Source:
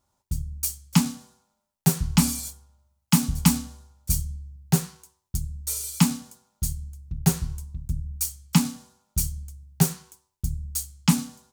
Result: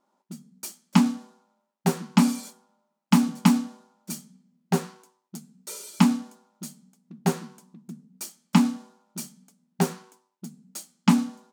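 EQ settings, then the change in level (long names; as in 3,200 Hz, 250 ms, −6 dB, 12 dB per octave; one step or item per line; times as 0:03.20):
linear-phase brick-wall high-pass 180 Hz
low-pass filter 1,300 Hz 6 dB per octave
+6.5 dB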